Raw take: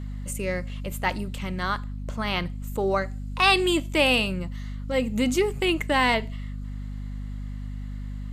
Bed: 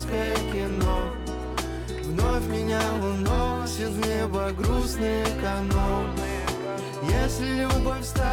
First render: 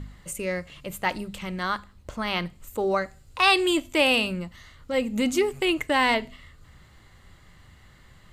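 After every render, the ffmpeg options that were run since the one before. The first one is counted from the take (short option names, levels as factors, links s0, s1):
-af "bandreject=f=50:t=h:w=4,bandreject=f=100:t=h:w=4,bandreject=f=150:t=h:w=4,bandreject=f=200:t=h:w=4,bandreject=f=250:t=h:w=4"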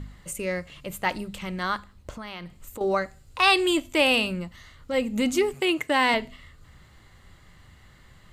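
-filter_complex "[0:a]asettb=1/sr,asplit=3[s0][s1][s2];[s0]atrim=end=2.104[s3];[s1]atrim=start=2.1:end=2.81,asetpts=PTS-STARTPTS,afade=t=in:d=0.004:c=qsin,afade=t=out:st=0.706:d=0.004:c=qsin,acompressor=threshold=0.02:ratio=6:attack=3.2:release=140:knee=1:detection=peak[s4];[s2]atrim=start=2.806[s5];[s3][s4]acrossfade=d=0.004:c1=hsin:c2=qsin[s6];[s6][s5]acrossfade=d=0.004:c1=qsin:c2=hsin,asettb=1/sr,asplit=3[s7][s8][s9];[s7]atrim=end=5.544[s10];[s8]atrim=start=5.54:end=6.14,asetpts=PTS-STARTPTS,afade=t=in:d=0.004:c=qsin,afade=t=out:st=0.596:d=0.004:c=qsin,highpass=130[s11];[s9]atrim=start=6.136[s12];[s10][s11]acrossfade=d=0.004:c1=hsin:c2=qsin[s13];[s13][s12]acrossfade=d=0.004:c1=qsin:c2=hsin"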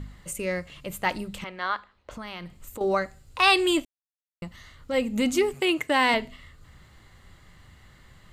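-filter_complex "[0:a]asettb=1/sr,asplit=3[s0][s1][s2];[s0]atrim=end=1.444[s3];[s1]atrim=start=1.44:end=2.11,asetpts=PTS-STARTPTS,afade=t=in:d=0.004:c=qsin,afade=t=out:st=0.666:d=0.004:c=qsin,acrossover=split=390 4400:gain=0.141 1 0.0708[s4][s5][s6];[s4][s5][s6]amix=inputs=3:normalize=0[s7];[s2]atrim=start=2.106[s8];[s3][s7]acrossfade=d=0.004:c1=hsin:c2=qsin[s9];[s9][s8]acrossfade=d=0.004:c1=qsin:c2=hsin,asplit=3[s10][s11][s12];[s10]atrim=end=3.85,asetpts=PTS-STARTPTS,afade=t=out:st=3.846:d=0.004:c=hsin[s13];[s11]atrim=start=3.85:end=4.42,asetpts=PTS-STARTPTS,volume=0[s14];[s12]atrim=start=4.42,asetpts=PTS-STARTPTS,afade=t=in:d=0.004:c=hsin[s15];[s13][s14][s15]concat=n=3:v=0:a=1"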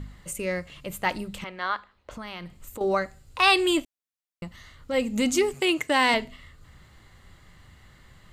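-filter_complex "[0:a]asettb=1/sr,asplit=3[s0][s1][s2];[s0]atrim=end=4.994[s3];[s1]atrim=start=4.99:end=6.24,asetpts=PTS-STARTPTS,afade=t=in:d=0.004:c=qsin,afade=t=out:st=1.246:d=0.004:c=qsin,equalizer=f=6400:w=1.1:g=5.5[s4];[s2]atrim=start=6.236[s5];[s3][s4]acrossfade=d=0.004:c1=hsin:c2=qsin[s6];[s6][s5]acrossfade=d=0.004:c1=qsin:c2=hsin"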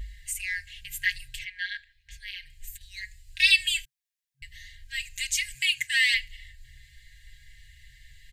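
-af "aecho=1:1:4.9:0.91,afftfilt=real='re*(1-between(b*sr/4096,130,1600))':imag='im*(1-between(b*sr/4096,130,1600))':win_size=4096:overlap=0.75"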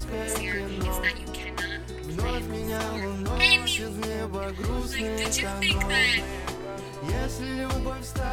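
-filter_complex "[1:a]volume=0.562[s0];[0:a][s0]amix=inputs=2:normalize=0"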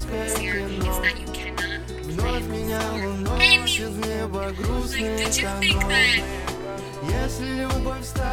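-af "volume=1.58,alimiter=limit=0.708:level=0:latency=1"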